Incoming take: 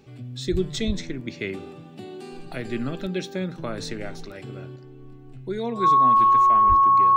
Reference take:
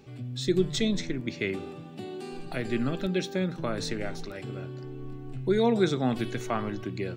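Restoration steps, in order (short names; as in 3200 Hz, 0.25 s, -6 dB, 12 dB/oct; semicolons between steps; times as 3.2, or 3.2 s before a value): notch 1100 Hz, Q 30; 0.51–0.63 HPF 140 Hz 24 dB/oct; 0.86–0.98 HPF 140 Hz 24 dB/oct; 4.76 gain correction +5 dB; 6.68–6.8 HPF 140 Hz 24 dB/oct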